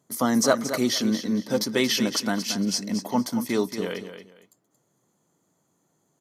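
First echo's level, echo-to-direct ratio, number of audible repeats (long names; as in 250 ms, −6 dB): −10.0 dB, −10.0 dB, 2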